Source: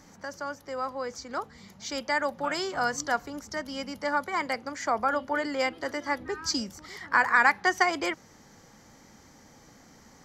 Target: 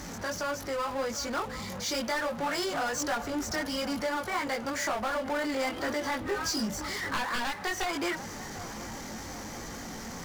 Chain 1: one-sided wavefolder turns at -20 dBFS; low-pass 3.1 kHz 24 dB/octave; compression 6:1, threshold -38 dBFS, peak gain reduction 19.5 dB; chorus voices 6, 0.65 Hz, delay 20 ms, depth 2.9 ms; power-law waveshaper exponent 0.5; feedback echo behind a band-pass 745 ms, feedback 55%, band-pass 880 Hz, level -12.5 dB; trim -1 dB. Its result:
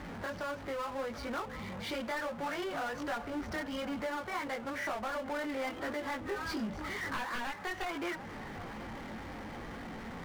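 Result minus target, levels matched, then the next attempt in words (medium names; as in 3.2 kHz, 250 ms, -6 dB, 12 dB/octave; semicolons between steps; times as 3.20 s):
compression: peak gain reduction +5.5 dB; 4 kHz band -3.5 dB
one-sided wavefolder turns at -20 dBFS; compression 6:1, threshold -31 dBFS, peak gain reduction 14 dB; chorus voices 6, 0.65 Hz, delay 20 ms, depth 2.9 ms; power-law waveshaper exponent 0.5; feedback echo behind a band-pass 745 ms, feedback 55%, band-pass 880 Hz, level -12.5 dB; trim -1 dB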